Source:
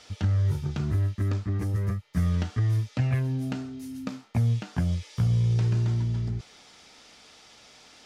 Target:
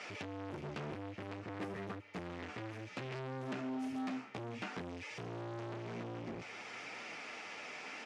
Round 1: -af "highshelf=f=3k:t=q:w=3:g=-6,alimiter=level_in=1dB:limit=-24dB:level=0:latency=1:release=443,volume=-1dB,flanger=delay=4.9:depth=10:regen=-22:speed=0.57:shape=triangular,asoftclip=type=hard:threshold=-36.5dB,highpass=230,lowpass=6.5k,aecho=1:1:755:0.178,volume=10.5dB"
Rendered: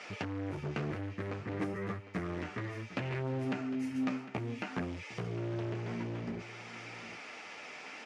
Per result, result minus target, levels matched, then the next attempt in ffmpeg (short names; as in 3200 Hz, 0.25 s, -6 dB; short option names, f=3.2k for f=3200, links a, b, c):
echo-to-direct +9 dB; hard clip: distortion -5 dB
-af "highshelf=f=3k:t=q:w=3:g=-6,alimiter=level_in=1dB:limit=-24dB:level=0:latency=1:release=443,volume=-1dB,flanger=delay=4.9:depth=10:regen=-22:speed=0.57:shape=triangular,asoftclip=type=hard:threshold=-36.5dB,highpass=230,lowpass=6.5k,aecho=1:1:755:0.0631,volume=10.5dB"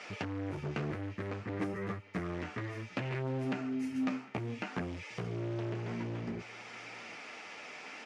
hard clip: distortion -5 dB
-af "highshelf=f=3k:t=q:w=3:g=-6,alimiter=level_in=1dB:limit=-24dB:level=0:latency=1:release=443,volume=-1dB,flanger=delay=4.9:depth=10:regen=-22:speed=0.57:shape=triangular,asoftclip=type=hard:threshold=-46dB,highpass=230,lowpass=6.5k,aecho=1:1:755:0.0631,volume=10.5dB"